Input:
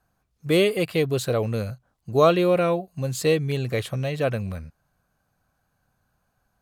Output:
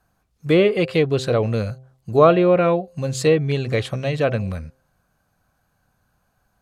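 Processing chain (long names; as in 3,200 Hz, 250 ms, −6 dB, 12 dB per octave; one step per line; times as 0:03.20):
treble cut that deepens with the level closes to 2,300 Hz, closed at −15.5 dBFS
hum removal 130.6 Hz, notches 6
level +4.5 dB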